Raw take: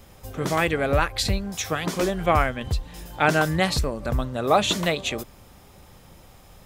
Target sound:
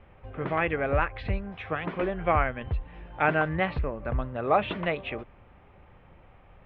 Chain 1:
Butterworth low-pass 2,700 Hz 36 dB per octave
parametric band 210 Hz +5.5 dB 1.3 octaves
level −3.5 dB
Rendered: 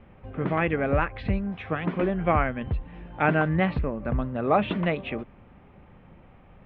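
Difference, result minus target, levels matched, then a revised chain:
250 Hz band +4.5 dB
Butterworth low-pass 2,700 Hz 36 dB per octave
parametric band 210 Hz −3.5 dB 1.3 octaves
level −3.5 dB

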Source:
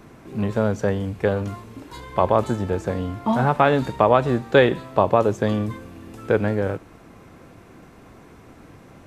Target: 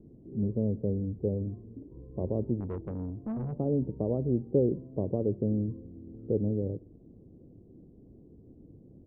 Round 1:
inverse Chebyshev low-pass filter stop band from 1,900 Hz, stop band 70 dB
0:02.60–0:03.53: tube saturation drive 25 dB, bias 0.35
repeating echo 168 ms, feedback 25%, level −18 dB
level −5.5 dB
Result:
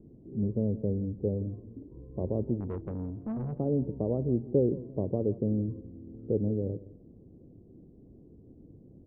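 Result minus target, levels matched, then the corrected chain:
echo-to-direct +12.5 dB
inverse Chebyshev low-pass filter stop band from 1,900 Hz, stop band 70 dB
0:02.60–0:03.53: tube saturation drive 25 dB, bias 0.35
repeating echo 168 ms, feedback 25%, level −30 dB
level −5.5 dB

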